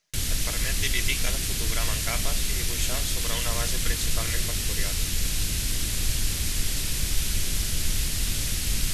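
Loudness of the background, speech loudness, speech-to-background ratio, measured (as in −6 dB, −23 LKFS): −27.0 LKFS, −34.0 LKFS, −7.0 dB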